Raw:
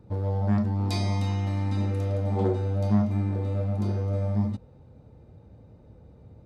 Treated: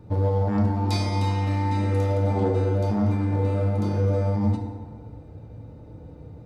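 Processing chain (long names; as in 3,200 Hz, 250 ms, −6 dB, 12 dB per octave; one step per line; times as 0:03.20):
brickwall limiter −20.5 dBFS, peak gain reduction 8.5 dB
feedback delay network reverb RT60 1.8 s, low-frequency decay 0.85×, high-frequency decay 0.45×, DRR 1.5 dB
level +5 dB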